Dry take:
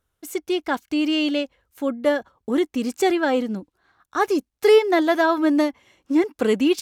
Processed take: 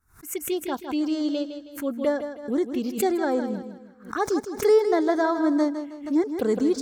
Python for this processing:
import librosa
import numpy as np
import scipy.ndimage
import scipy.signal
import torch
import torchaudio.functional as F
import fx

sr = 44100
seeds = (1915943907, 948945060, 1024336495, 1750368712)

y = fx.env_phaser(x, sr, low_hz=540.0, high_hz=2800.0, full_db=-17.0)
y = fx.echo_feedback(y, sr, ms=159, feedback_pct=38, wet_db=-9.5)
y = fx.pre_swell(y, sr, db_per_s=140.0)
y = y * librosa.db_to_amplitude(-3.5)